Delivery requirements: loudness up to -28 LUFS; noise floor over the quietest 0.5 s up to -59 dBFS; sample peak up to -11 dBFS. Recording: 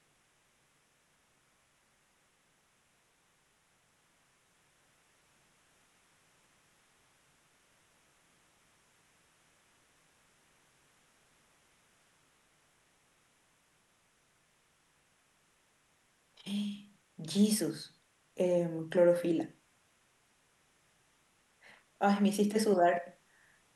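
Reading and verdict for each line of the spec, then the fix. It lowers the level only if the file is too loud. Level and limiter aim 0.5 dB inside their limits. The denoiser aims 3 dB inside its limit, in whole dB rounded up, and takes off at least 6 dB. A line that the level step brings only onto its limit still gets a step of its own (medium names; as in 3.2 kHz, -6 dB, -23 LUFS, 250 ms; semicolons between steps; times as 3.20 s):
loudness -31.0 LUFS: pass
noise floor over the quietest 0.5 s -72 dBFS: pass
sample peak -15.0 dBFS: pass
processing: none needed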